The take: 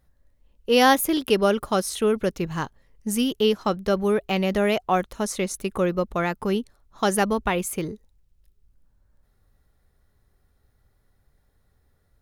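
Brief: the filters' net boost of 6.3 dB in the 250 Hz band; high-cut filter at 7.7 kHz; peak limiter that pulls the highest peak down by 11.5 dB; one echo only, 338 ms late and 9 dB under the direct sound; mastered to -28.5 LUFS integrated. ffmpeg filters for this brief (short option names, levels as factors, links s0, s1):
-af "lowpass=7700,equalizer=f=250:t=o:g=8,alimiter=limit=0.178:level=0:latency=1,aecho=1:1:338:0.355,volume=0.708"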